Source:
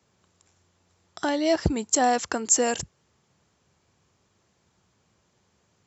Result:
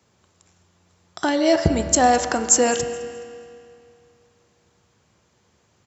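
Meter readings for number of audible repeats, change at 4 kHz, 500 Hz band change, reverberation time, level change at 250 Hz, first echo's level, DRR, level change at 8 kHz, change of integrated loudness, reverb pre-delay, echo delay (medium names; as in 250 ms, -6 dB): 1, +5.0 dB, +6.0 dB, 2.5 s, +5.0 dB, -20.0 dB, 6.5 dB, no reading, +5.0 dB, 5 ms, 211 ms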